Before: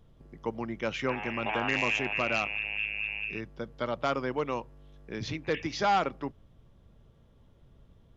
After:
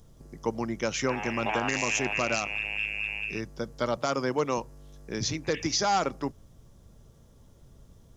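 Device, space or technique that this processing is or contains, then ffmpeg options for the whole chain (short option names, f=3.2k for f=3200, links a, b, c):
over-bright horn tweeter: -filter_complex "[0:a]asettb=1/sr,asplit=3[a][b][c];[a]atrim=end=3.974[d];[b]atrim=start=3.97:end=4.58,asetpts=PTS-STARTPTS,afade=t=in:d=0.004:c=qsin,afade=t=out:st=0.606:d=0.004:c=qsin,highpass=f=81:w=0.5412,highpass=f=81:w=1.3066[e];[c]atrim=start=4.576[f];[d][e]acrossfade=d=0.004:c1=hsin:c2=qsin[g];[g][f]acrossfade=d=0.004:c1=qsin:c2=hsin,highshelf=f=4.4k:t=q:w=1.5:g=11.5,alimiter=limit=-19.5dB:level=0:latency=1:release=121,volume=4dB"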